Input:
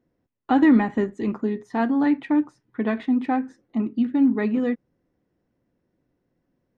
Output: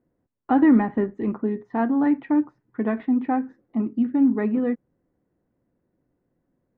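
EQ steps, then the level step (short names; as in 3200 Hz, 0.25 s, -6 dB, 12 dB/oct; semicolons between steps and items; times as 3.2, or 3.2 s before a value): LPF 1700 Hz 12 dB/oct; 0.0 dB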